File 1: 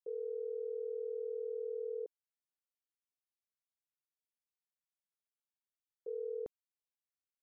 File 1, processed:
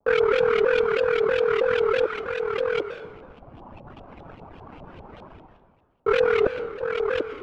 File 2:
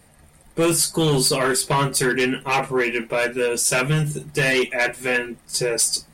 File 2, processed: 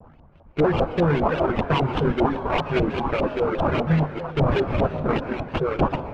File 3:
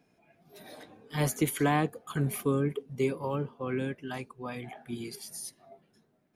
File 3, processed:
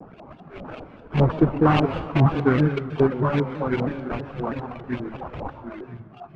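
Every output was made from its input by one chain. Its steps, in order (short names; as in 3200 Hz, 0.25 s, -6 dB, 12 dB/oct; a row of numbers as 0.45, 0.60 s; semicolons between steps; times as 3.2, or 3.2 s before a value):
on a send: delay with a stepping band-pass 0.248 s, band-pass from 2500 Hz, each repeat -1.4 oct, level -2 dB; on the sum: sample-rate reducer 1900 Hz, jitter 20%; reverb removal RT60 1.3 s; low shelf 340 Hz +8.5 dB; LFO low-pass saw up 5 Hz 650–3300 Hz; reverse; upward compressor, threshold -34 dBFS; reverse; plate-style reverb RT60 1.3 s, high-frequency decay 0.55×, pre-delay 0.11 s, DRR 10 dB; shaped vibrato saw down 3.1 Hz, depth 160 cents; match loudness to -23 LUFS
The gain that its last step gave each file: +17.0, -5.5, +4.5 dB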